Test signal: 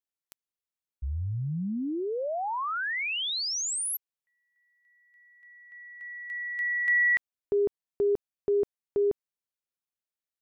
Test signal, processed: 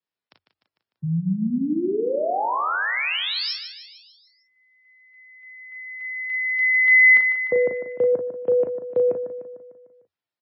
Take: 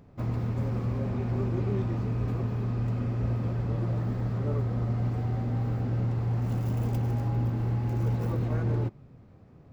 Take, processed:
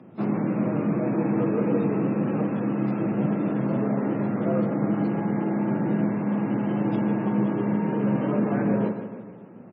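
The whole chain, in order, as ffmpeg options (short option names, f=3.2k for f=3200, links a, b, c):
-filter_complex "[0:a]asplit=2[a][b];[b]aecho=0:1:150|300|450|600|750|900:0.335|0.184|0.101|0.0557|0.0307|0.0169[c];[a][c]amix=inputs=2:normalize=0,afreqshift=88,aemphasis=mode=reproduction:type=cd,asplit=2[d][e];[e]aecho=0:1:37|54:0.562|0.158[f];[d][f]amix=inputs=2:normalize=0,volume=6dB" -ar 22050 -c:a libmp3lame -b:a 16k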